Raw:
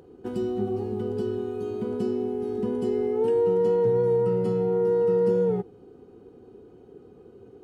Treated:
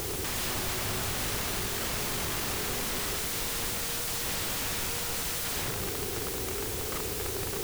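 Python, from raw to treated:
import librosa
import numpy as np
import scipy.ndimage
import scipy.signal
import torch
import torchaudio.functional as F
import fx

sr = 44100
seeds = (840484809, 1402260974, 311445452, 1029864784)

p1 = fx.peak_eq(x, sr, hz=220.0, db=-14.5, octaves=1.4)
p2 = fx.room_flutter(p1, sr, wall_m=6.4, rt60_s=0.29)
p3 = fx.fold_sine(p2, sr, drive_db=15, ceiling_db=-18.5)
p4 = p2 + F.gain(torch.from_numpy(p3), -6.0).numpy()
p5 = fx.echo_feedback(p4, sr, ms=228, feedback_pct=53, wet_db=-21)
p6 = (np.mod(10.0 ** (31.5 / 20.0) * p5 + 1.0, 2.0) - 1.0) / 10.0 ** (31.5 / 20.0)
p7 = fx.quant_dither(p6, sr, seeds[0], bits=6, dither='triangular')
y = fx.low_shelf(p7, sr, hz=170.0, db=11.0)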